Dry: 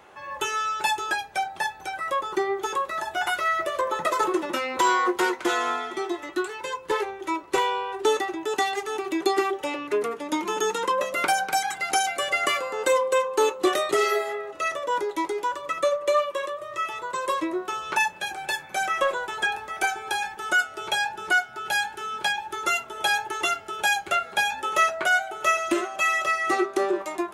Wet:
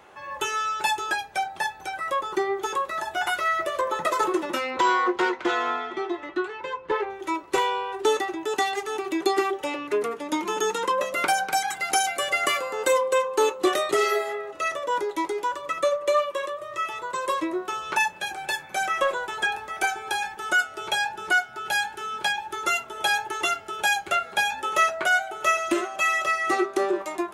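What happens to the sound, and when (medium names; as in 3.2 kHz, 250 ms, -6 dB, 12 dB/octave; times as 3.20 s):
4.70–7.09 s: low-pass 5.1 kHz -> 2.5 kHz
11.68–13.01 s: treble shelf 12 kHz +8 dB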